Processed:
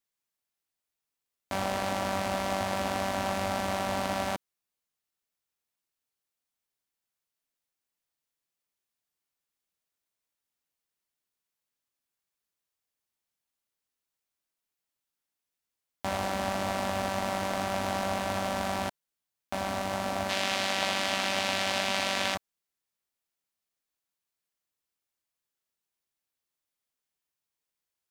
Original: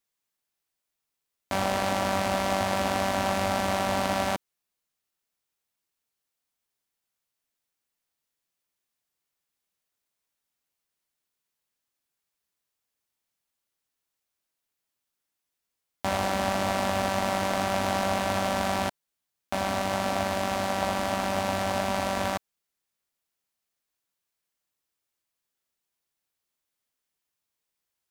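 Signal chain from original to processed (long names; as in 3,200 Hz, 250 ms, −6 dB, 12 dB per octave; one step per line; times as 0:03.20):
0:20.29–0:22.35: meter weighting curve D
level −4 dB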